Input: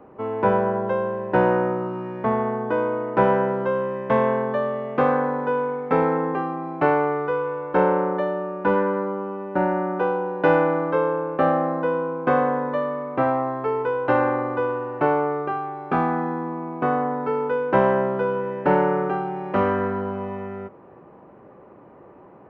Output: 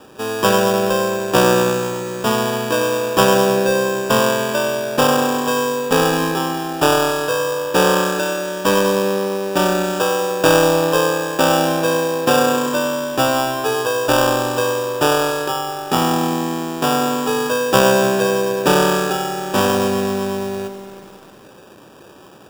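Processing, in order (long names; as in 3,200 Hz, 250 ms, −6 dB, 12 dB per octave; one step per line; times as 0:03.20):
decimation without filtering 21×
feedback echo at a low word length 97 ms, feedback 80%, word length 7 bits, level −13.5 dB
level +4 dB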